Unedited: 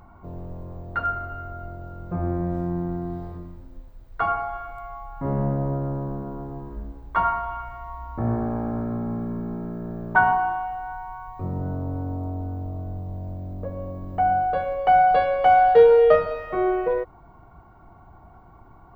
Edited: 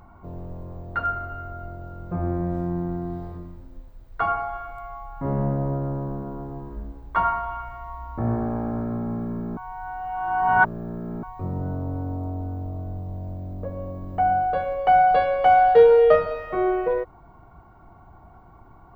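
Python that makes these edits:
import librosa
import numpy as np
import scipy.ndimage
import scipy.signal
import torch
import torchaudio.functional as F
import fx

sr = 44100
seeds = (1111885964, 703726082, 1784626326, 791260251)

y = fx.edit(x, sr, fx.reverse_span(start_s=9.57, length_s=1.66), tone=tone)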